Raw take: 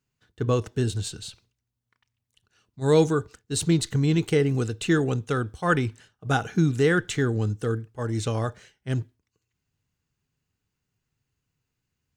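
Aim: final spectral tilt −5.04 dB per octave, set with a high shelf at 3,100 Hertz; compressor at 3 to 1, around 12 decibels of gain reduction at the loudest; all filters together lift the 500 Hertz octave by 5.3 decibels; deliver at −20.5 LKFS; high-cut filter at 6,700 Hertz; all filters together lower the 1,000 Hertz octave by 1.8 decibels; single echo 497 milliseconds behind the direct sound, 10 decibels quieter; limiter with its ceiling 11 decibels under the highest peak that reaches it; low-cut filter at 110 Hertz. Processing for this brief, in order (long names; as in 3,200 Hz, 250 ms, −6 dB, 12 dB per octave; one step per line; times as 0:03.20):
high-pass filter 110 Hz
low-pass filter 6,700 Hz
parametric band 500 Hz +7 dB
parametric band 1,000 Hz −6 dB
high-shelf EQ 3,100 Hz +8 dB
downward compressor 3 to 1, threshold −26 dBFS
brickwall limiter −24 dBFS
single-tap delay 497 ms −10 dB
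level +14 dB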